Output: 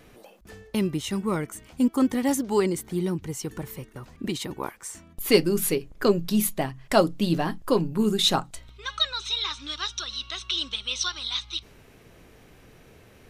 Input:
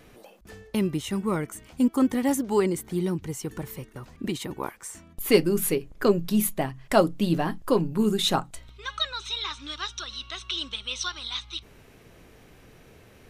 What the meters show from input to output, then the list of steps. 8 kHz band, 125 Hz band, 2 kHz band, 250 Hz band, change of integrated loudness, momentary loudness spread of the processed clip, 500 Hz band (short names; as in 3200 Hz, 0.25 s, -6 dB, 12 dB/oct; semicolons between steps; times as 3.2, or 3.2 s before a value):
+2.0 dB, 0.0 dB, +1.0 dB, 0.0 dB, +0.5 dB, 13 LU, 0.0 dB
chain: dynamic EQ 4800 Hz, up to +5 dB, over -45 dBFS, Q 1.1